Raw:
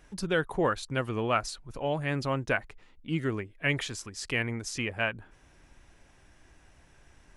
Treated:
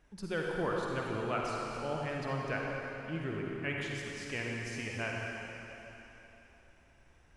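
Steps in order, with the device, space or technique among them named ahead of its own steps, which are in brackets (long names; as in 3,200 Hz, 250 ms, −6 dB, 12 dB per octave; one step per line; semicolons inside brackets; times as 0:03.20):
swimming-pool hall (convolution reverb RT60 3.4 s, pre-delay 43 ms, DRR −2 dB; high-shelf EQ 3,800 Hz −6.5 dB)
level −8.5 dB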